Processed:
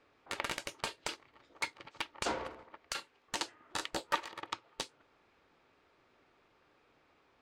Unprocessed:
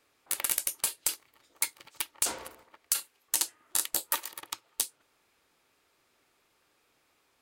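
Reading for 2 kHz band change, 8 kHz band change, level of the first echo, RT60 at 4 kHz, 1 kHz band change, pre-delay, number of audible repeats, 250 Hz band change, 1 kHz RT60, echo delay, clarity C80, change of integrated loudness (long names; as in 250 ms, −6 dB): +1.0 dB, −16.5 dB, no echo audible, no reverb audible, +3.5 dB, no reverb audible, no echo audible, +5.0 dB, no reverb audible, no echo audible, no reverb audible, −8.5 dB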